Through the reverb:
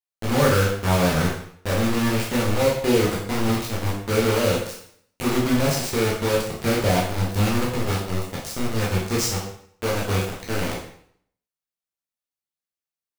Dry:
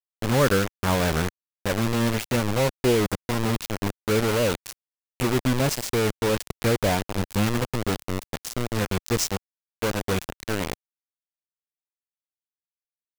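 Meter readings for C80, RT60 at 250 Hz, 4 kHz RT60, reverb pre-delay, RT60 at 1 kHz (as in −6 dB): 7.0 dB, 0.65 s, 0.60 s, 5 ms, 0.60 s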